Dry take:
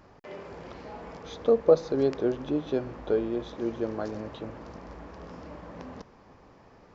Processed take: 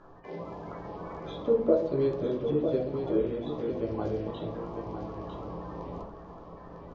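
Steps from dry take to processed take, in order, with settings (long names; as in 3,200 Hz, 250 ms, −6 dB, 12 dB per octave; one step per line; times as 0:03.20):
spectral magnitudes quantised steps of 30 dB
dynamic equaliser 1,600 Hz, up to −4 dB, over −43 dBFS, Q 1
in parallel at −1 dB: downward compressor, threshold −35 dBFS, peak gain reduction 19 dB
on the sum: high-frequency loss of the air 130 metres
single-tap delay 951 ms −7.5 dB
convolution reverb RT60 0.50 s, pre-delay 6 ms, DRR −1 dB
level −6.5 dB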